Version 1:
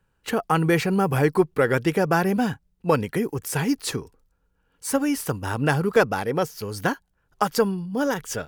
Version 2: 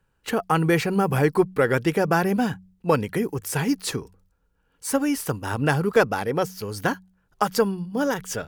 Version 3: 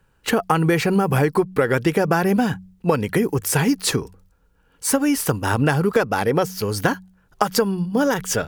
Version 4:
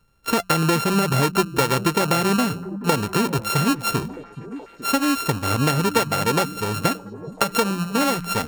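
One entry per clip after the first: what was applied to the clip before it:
hum removal 93.06 Hz, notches 2
downward compressor 10 to 1, threshold −22 dBFS, peak gain reduction 10.5 dB; level +8 dB
samples sorted by size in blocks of 32 samples; echo through a band-pass that steps 425 ms, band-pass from 160 Hz, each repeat 0.7 octaves, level −9 dB; level −1.5 dB

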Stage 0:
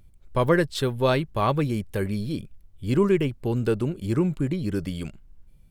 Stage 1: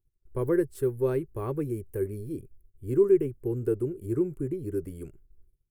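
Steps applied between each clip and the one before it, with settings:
noise gate −47 dBFS, range −20 dB
drawn EQ curve 130 Hz 0 dB, 200 Hz −10 dB, 390 Hz +9 dB, 630 Hz −10 dB, 1,600 Hz −8 dB, 2,400 Hz −13 dB, 3,700 Hz −24 dB, 11,000 Hz +5 dB
level −6.5 dB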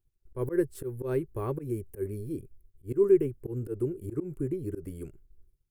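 volume swells 108 ms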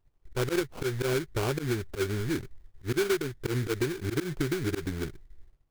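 sample-rate reduction 1,900 Hz, jitter 20%
downward compressor 6 to 1, threshold −32 dBFS, peak gain reduction 15.5 dB
level +7 dB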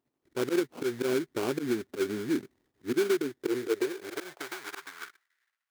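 high-pass filter sweep 250 Hz → 1,600 Hz, 0:03.16–0:05.37
level −3 dB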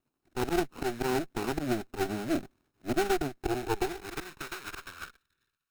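lower of the sound and its delayed copy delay 0.75 ms
level +1 dB

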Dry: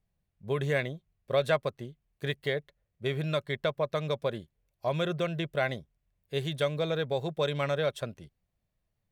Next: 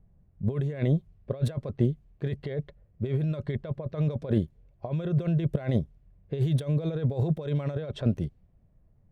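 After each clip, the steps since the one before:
compressor whose output falls as the input rises −38 dBFS, ratio −1
tilt shelving filter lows +8.5 dB, about 700 Hz
low-pass that shuts in the quiet parts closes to 1,700 Hz, open at −27 dBFS
level +4 dB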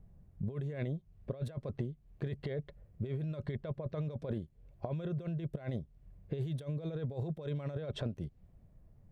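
downward compressor 12 to 1, threshold −36 dBFS, peak gain reduction 18 dB
level +2 dB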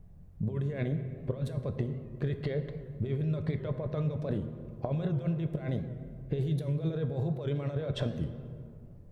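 convolution reverb RT60 2.3 s, pre-delay 7 ms, DRR 6.5 dB
wow of a warped record 78 rpm, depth 100 cents
level +4.5 dB

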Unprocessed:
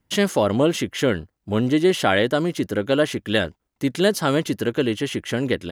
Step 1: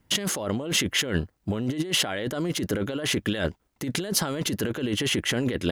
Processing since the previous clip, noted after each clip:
compressor whose output falls as the input rises −27 dBFS, ratio −1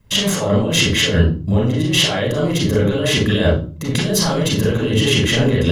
convolution reverb RT60 0.40 s, pre-delay 32 ms, DRR −4.5 dB
level −1 dB

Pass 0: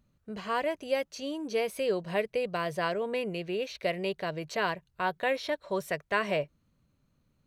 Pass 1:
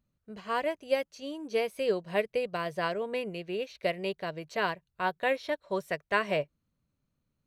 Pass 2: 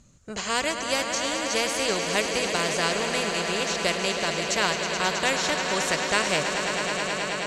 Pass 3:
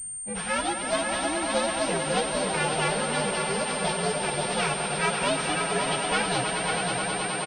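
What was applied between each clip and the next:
expander for the loud parts 1.5 to 1, over −45 dBFS; level +2 dB
low-pass with resonance 7,000 Hz, resonance Q 8.3; echo that builds up and dies away 107 ms, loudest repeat 5, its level −14 dB; every bin compressed towards the loudest bin 2 to 1; level +3.5 dB
partials spread apart or drawn together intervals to 125%; single-tap delay 553 ms −7 dB; switching amplifier with a slow clock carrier 8,700 Hz; level +3.5 dB

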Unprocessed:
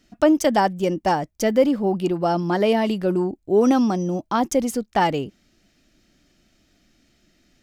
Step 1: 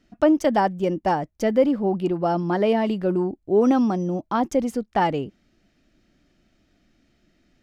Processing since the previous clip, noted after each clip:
high-shelf EQ 4,000 Hz −12 dB
level −1 dB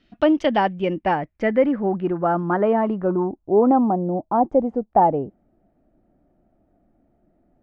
low-pass filter sweep 3,500 Hz → 760 Hz, 0:00.10–0:04.09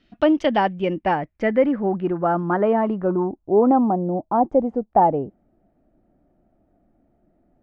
no processing that can be heard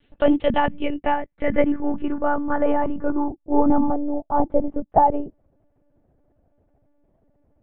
one-pitch LPC vocoder at 8 kHz 290 Hz

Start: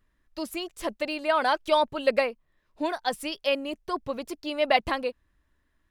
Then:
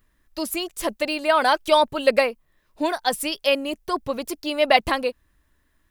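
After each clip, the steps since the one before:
high-shelf EQ 8,000 Hz +11 dB
level +5 dB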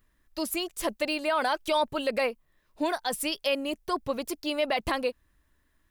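brickwall limiter −13.5 dBFS, peak gain reduction 10.5 dB
level −3.5 dB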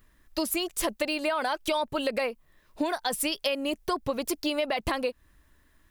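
downward compressor, threshold −32 dBFS, peak gain reduction 10.5 dB
level +7 dB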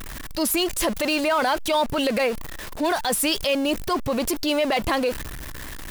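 converter with a step at zero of −35 dBFS
transient designer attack −6 dB, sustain +3 dB
level +6 dB

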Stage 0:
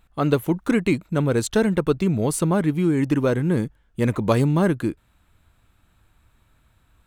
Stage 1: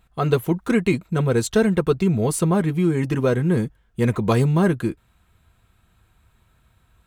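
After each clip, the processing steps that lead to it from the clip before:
notch comb filter 290 Hz
level +2 dB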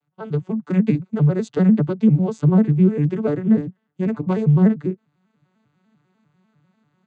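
vocoder with an arpeggio as carrier major triad, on D3, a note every 99 ms
automatic gain control gain up to 11 dB
level −4 dB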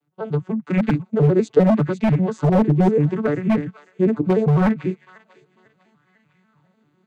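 delay with a high-pass on its return 499 ms, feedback 39%, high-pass 1,900 Hz, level −8 dB
wave folding −11.5 dBFS
auto-filter bell 0.72 Hz 330–2,400 Hz +10 dB

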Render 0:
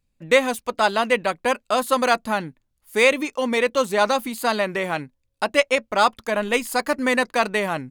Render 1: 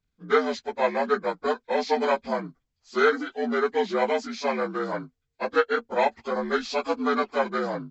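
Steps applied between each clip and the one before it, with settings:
partials spread apart or drawn together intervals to 78%
level −3 dB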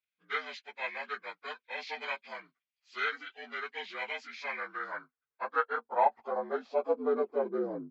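band-pass filter sweep 2,500 Hz → 350 Hz, 0:04.13–0:07.63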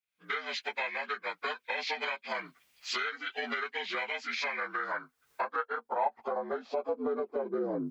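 camcorder AGC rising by 67 dB per second
level −4.5 dB

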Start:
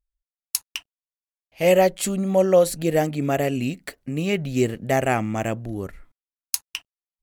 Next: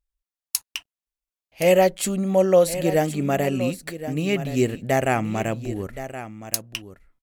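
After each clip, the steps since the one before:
single-tap delay 1,071 ms −12.5 dB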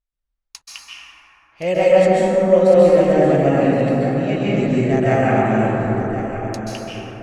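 high-frequency loss of the air 110 metres
convolution reverb RT60 4.1 s, pre-delay 123 ms, DRR −8.5 dB
level −3.5 dB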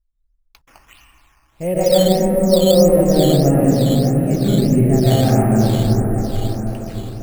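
spectral tilt −4 dB per octave
sample-and-hold swept by an LFO 8×, swing 100% 1.6 Hz
level −5 dB

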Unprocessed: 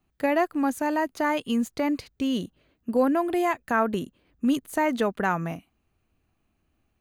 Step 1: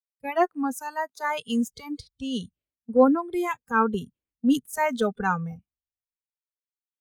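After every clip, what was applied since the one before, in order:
noise reduction from a noise print of the clip's start 20 dB
multiband upward and downward expander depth 100%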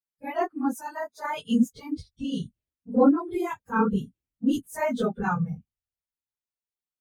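random phases in long frames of 50 ms
low-shelf EQ 270 Hz +9.5 dB
level −4.5 dB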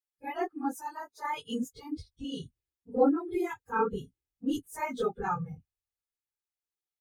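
comb filter 2.4 ms, depth 67%
level −5.5 dB

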